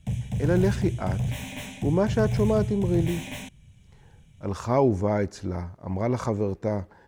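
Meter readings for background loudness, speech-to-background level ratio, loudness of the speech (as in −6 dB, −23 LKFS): −30.0 LKFS, 3.5 dB, −26.5 LKFS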